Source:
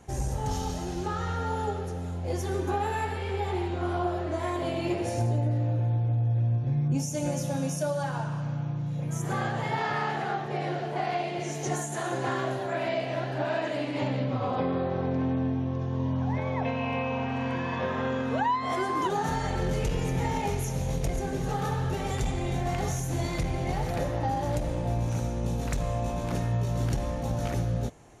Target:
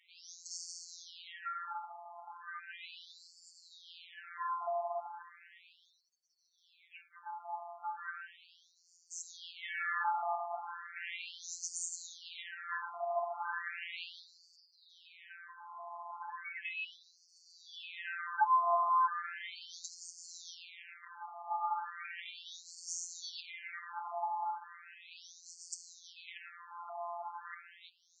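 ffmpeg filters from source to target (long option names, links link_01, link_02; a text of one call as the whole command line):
ffmpeg -i in.wav -af "afftfilt=real='hypot(re,im)*cos(PI*b)':imag='0':win_size=1024:overlap=0.75,acontrast=23,afftfilt=real='re*between(b*sr/1024,910*pow(6300/910,0.5+0.5*sin(2*PI*0.36*pts/sr))/1.41,910*pow(6300/910,0.5+0.5*sin(2*PI*0.36*pts/sr))*1.41)':imag='im*between(b*sr/1024,910*pow(6300/910,0.5+0.5*sin(2*PI*0.36*pts/sr))/1.41,910*pow(6300/910,0.5+0.5*sin(2*PI*0.36*pts/sr))*1.41)':win_size=1024:overlap=0.75,volume=-2dB" out.wav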